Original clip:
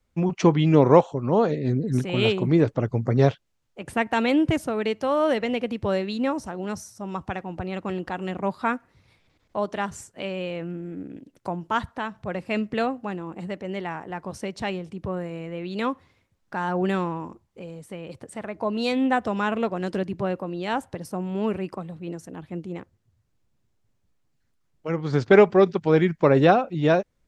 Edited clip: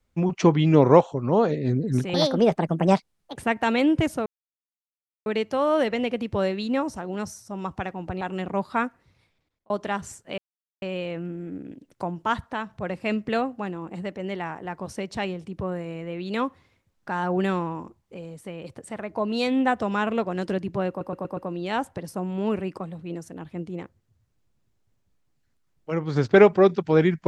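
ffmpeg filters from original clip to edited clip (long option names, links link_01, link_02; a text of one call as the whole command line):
ffmpeg -i in.wav -filter_complex "[0:a]asplit=11[link_01][link_02][link_03][link_04][link_05][link_06][link_07][link_08][link_09][link_10][link_11];[link_01]atrim=end=2.144[link_12];[link_02]atrim=start=2.14:end=3.86,asetpts=PTS-STARTPTS,asetrate=62181,aresample=44100[link_13];[link_03]atrim=start=3.856:end=4.76,asetpts=PTS-STARTPTS,afade=type=out:start_time=0.9:duration=0.004:curve=hsin,apad=pad_dur=1[link_14];[link_04]atrim=start=4.76:end=7.712,asetpts=PTS-STARTPTS,afade=type=in:duration=0.004:curve=hsin[link_15];[link_05]atrim=start=8.098:end=9.59,asetpts=PTS-STARTPTS,afade=type=out:start_time=0.652:duration=0.84[link_16];[link_06]atrim=start=9.59:end=10.27,asetpts=PTS-STARTPTS,afade=type=in:duration=0.004:curve=hsin,afade=type=out:start_time=0.676:duration=0.004:curve=hsin,apad=pad_dur=0.44[link_17];[link_07]atrim=start=10.27:end=20.462,asetpts=PTS-STARTPTS,afade=type=in:duration=0.004:curve=hsin[link_18];[link_08]atrim=start=20.338:end=20.462[link_19];[link_09]atrim=start=20.338:end=20.462[link_20];[link_10]atrim=start=20.338:end=20.462[link_21];[link_11]atrim=start=20.338[link_22];[link_12][link_13]acrossfade=duration=0.004:curve1=hsin:curve2=hsin[link_23];[link_14][link_15]concat=n=2:v=0:a=1[link_24];[link_23][link_24]acrossfade=duration=0.004:curve1=hsin:curve2=hsin[link_25];[link_16][link_17][link_18]concat=n=3:v=0:a=1[link_26];[link_25][link_26]acrossfade=duration=0.004:curve1=hsin:curve2=hsin[link_27];[link_27][link_19]acrossfade=duration=0.004:curve1=hsin:curve2=hsin[link_28];[link_28][link_20]acrossfade=duration=0.004:curve1=hsin:curve2=hsin[link_29];[link_29][link_21]acrossfade=duration=0.004:curve1=hsin:curve2=hsin[link_30];[link_30][link_22]acrossfade=duration=0.004:curve1=hsin:curve2=hsin" out.wav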